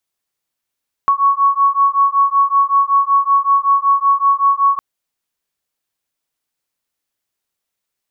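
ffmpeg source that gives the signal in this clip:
ffmpeg -f lavfi -i "aevalsrc='0.211*(sin(2*PI*1110*t)+sin(2*PI*1115.3*t))':duration=3.71:sample_rate=44100" out.wav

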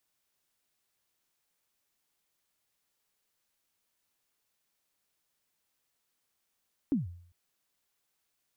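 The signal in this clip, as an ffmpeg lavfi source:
ffmpeg -f lavfi -i "aevalsrc='0.0794*pow(10,-3*t/0.59)*sin(2*PI*(310*0.149/log(87/310)*(exp(log(87/310)*min(t,0.149)/0.149)-1)+87*max(t-0.149,0)))':duration=0.4:sample_rate=44100" out.wav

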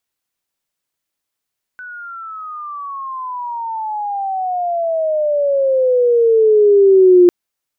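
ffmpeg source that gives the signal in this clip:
ffmpeg -f lavfi -i "aevalsrc='pow(10,(-29+25*t/5.5)/20)*sin(2*PI*1500*5.5/log(350/1500)*(exp(log(350/1500)*t/5.5)-1))':duration=5.5:sample_rate=44100" out.wav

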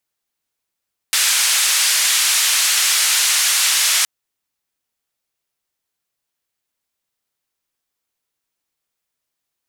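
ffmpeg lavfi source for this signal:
ffmpeg -f lavfi -i "anoisesrc=color=white:duration=2.92:sample_rate=44100:seed=1,highpass=frequency=1600,lowpass=frequency=9600,volume=-6.8dB" out.wav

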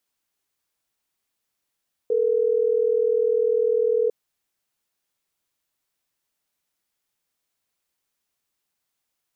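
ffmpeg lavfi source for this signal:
ffmpeg -f lavfi -i "aevalsrc='0.0944*(sin(2*PI*440*t)+sin(2*PI*480*t))*clip(min(mod(t,6),2-mod(t,6))/0.005,0,1)':duration=3.12:sample_rate=44100" out.wav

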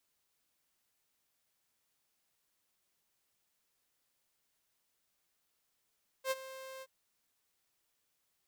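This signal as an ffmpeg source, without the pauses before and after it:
ffmpeg -f lavfi -i "aevalsrc='0.0447*(2*mod(528*t,1)-1)':duration=0.625:sample_rate=44100,afade=type=in:duration=0.07,afade=type=out:start_time=0.07:duration=0.033:silence=0.158,afade=type=out:start_time=0.58:duration=0.045" out.wav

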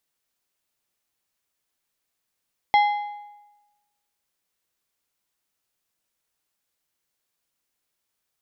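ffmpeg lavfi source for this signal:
ffmpeg -f lavfi -i "aevalsrc='0.237*pow(10,-3*t/1.08)*sin(2*PI*827*t)+0.0944*pow(10,-3*t/0.82)*sin(2*PI*2067.5*t)+0.0376*pow(10,-3*t/0.713)*sin(2*PI*3308*t)+0.015*pow(10,-3*t/0.666)*sin(2*PI*4135*t)+0.00596*pow(10,-3*t/0.616)*sin(2*PI*5375.5*t)':duration=1.55:sample_rate=44100" out.wav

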